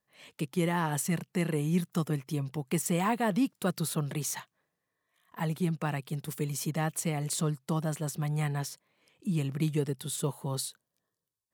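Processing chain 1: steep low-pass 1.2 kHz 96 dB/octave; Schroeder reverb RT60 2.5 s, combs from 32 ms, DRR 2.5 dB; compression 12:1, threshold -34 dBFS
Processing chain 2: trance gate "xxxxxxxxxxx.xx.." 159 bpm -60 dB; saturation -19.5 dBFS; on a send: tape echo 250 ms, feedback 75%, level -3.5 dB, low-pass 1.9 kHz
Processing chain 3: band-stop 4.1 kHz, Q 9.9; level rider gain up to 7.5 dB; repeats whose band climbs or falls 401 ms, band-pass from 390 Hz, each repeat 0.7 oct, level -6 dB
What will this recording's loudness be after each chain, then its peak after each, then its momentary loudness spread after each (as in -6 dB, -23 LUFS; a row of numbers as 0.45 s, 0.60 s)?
-39.5 LUFS, -32.5 LUFS, -24.0 LUFS; -25.0 dBFS, -17.0 dBFS, -8.0 dBFS; 6 LU, 13 LU, 16 LU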